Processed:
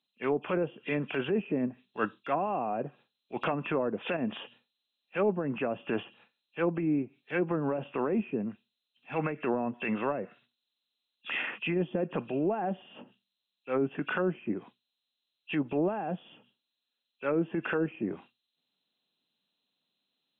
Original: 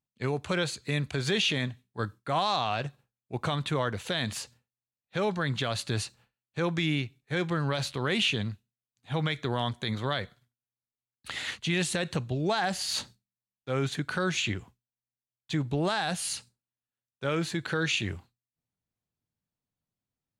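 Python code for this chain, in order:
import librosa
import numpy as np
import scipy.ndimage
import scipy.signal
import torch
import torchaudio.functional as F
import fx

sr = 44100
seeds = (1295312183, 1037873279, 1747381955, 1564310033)

p1 = fx.freq_compress(x, sr, knee_hz=2400.0, ratio=4.0)
p2 = scipy.signal.sosfilt(scipy.signal.butter(4, 210.0, 'highpass', fs=sr, output='sos'), p1)
p3 = fx.transient(p2, sr, attack_db=-8, sustain_db=-1)
p4 = fx.env_lowpass_down(p3, sr, base_hz=510.0, full_db=-28.5)
p5 = fx.rider(p4, sr, range_db=10, speed_s=0.5)
y = p4 + (p5 * librosa.db_to_amplitude(0.5))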